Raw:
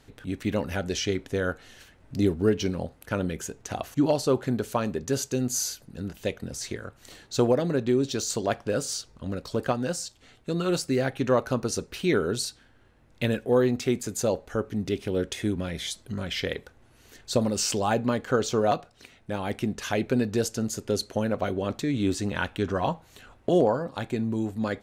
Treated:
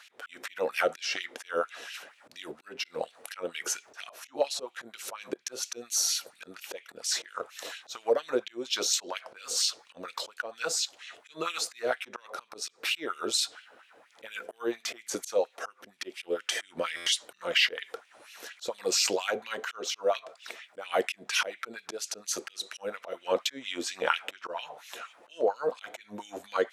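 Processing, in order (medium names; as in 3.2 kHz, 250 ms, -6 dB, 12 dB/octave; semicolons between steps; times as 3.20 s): compression 6:1, threshold -30 dBFS, peak gain reduction 12.5 dB; band-stop 430 Hz, Q 12; slow attack 184 ms; LFO high-pass sine 4.6 Hz 480–3000 Hz; wide varispeed 0.929×; buffer glitch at 16.96 s, samples 512, times 8; trim +6.5 dB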